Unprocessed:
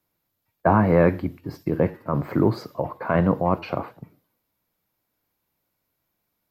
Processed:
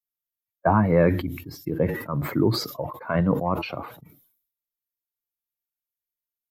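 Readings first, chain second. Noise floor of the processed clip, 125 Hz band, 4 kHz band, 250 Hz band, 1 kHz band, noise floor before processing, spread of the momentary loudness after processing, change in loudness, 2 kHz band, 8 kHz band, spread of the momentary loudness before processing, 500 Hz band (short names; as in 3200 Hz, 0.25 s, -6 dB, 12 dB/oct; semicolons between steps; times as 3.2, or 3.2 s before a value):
under -85 dBFS, -1.0 dB, +11.0 dB, -1.5 dB, -2.5 dB, -78 dBFS, 14 LU, -1.5 dB, -1.0 dB, n/a, 13 LU, -2.0 dB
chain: per-bin expansion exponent 1.5; sustainer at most 85 dB/s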